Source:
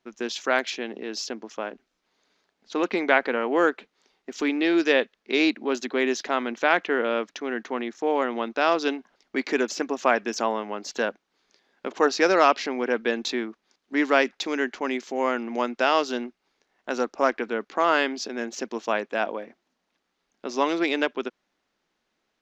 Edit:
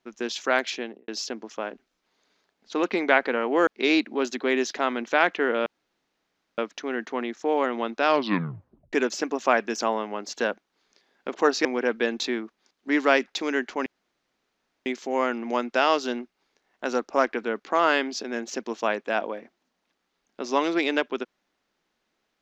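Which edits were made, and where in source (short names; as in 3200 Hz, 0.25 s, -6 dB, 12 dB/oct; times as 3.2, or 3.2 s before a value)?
0.78–1.08 studio fade out
3.67–5.17 cut
7.16 insert room tone 0.92 s
8.64 tape stop 0.87 s
12.23–12.7 cut
14.91 insert room tone 1.00 s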